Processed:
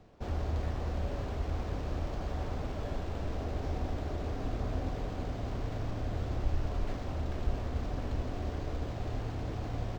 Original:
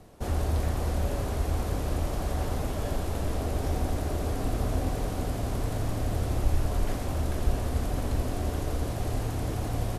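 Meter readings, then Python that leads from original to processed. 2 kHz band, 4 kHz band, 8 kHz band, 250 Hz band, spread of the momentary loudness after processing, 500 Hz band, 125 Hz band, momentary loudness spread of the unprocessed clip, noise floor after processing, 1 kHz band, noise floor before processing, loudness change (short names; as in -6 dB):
-6.0 dB, -7.5 dB, -16.0 dB, -6.0 dB, 3 LU, -6.0 dB, -6.0 dB, 3 LU, -38 dBFS, -6.0 dB, -32 dBFS, -6.0 dB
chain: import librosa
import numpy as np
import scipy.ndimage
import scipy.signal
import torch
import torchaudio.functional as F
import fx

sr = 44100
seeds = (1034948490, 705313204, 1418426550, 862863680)

y = np.interp(np.arange(len(x)), np.arange(len(x))[::4], x[::4])
y = y * librosa.db_to_amplitude(-6.0)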